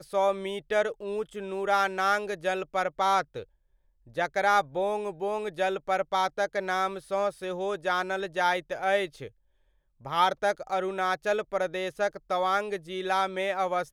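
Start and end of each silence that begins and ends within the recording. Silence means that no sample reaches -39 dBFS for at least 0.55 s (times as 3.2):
3.43–4.17
9.28–10.05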